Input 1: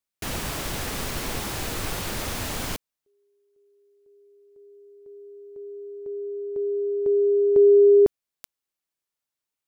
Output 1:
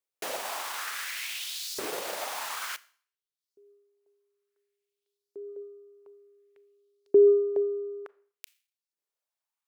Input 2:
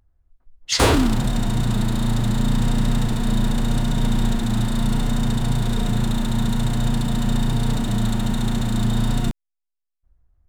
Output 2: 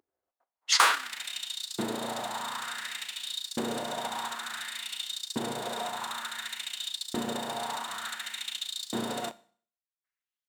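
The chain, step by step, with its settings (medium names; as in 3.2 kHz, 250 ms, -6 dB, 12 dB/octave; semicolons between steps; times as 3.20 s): LFO high-pass saw up 0.56 Hz 350–5100 Hz; transient shaper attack +2 dB, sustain -8 dB; Schroeder reverb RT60 0.48 s, combs from 27 ms, DRR 18.5 dB; trim -4.5 dB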